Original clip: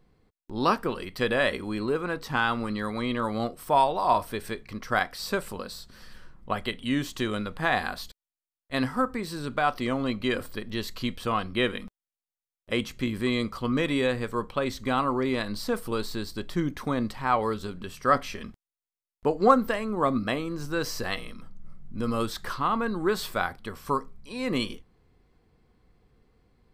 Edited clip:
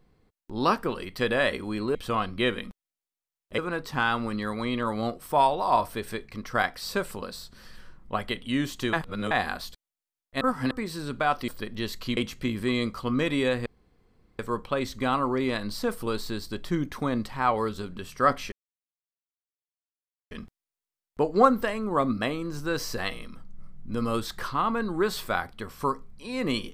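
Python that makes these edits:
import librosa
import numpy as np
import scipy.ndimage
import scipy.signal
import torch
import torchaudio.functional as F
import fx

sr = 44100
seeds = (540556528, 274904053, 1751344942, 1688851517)

y = fx.edit(x, sr, fx.reverse_span(start_s=7.3, length_s=0.38),
    fx.reverse_span(start_s=8.78, length_s=0.3),
    fx.cut(start_s=9.85, length_s=0.58),
    fx.move(start_s=11.12, length_s=1.63, to_s=1.95),
    fx.insert_room_tone(at_s=14.24, length_s=0.73),
    fx.insert_silence(at_s=18.37, length_s=1.79), tone=tone)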